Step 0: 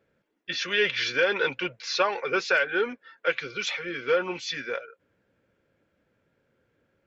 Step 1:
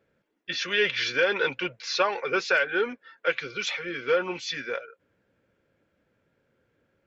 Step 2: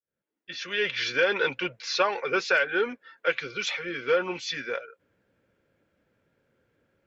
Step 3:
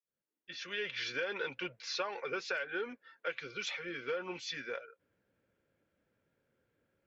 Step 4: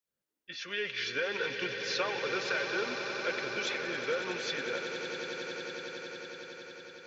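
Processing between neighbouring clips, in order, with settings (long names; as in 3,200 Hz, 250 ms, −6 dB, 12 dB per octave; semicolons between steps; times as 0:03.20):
no processing that can be heard
fade in at the beginning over 1.20 s
downward compressor 3 to 1, threshold −26 dBFS, peak gain reduction 6.5 dB; level −8 dB
echo that builds up and dies away 92 ms, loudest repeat 8, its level −12 dB; level +3 dB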